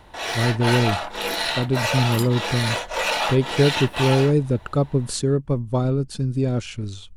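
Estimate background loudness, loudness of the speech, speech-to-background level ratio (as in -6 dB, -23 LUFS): -24.5 LUFS, -22.5 LUFS, 2.0 dB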